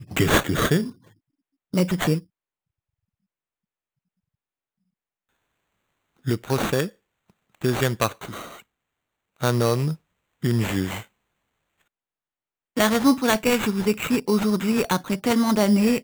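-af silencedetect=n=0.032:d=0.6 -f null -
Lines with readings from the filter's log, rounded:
silence_start: 0.90
silence_end: 1.74 | silence_duration: 0.84
silence_start: 2.19
silence_end: 6.27 | silence_duration: 4.08
silence_start: 6.87
silence_end: 7.62 | silence_duration: 0.75
silence_start: 8.45
silence_end: 9.42 | silence_duration: 0.97
silence_start: 11.01
silence_end: 12.77 | silence_duration: 1.76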